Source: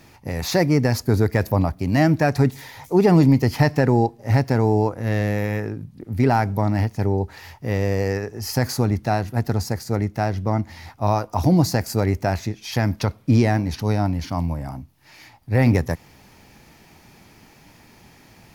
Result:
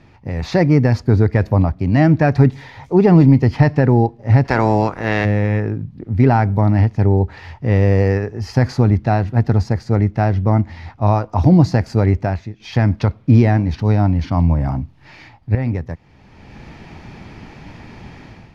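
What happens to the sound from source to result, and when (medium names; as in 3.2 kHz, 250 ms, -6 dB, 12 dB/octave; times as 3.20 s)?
4.44–5.24 s: spectral peaks clipped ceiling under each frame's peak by 22 dB
12.60–15.55 s: gain +10.5 dB
whole clip: low-pass 3.4 kHz 12 dB/octave; bass shelf 210 Hz +6.5 dB; level rider; trim -1 dB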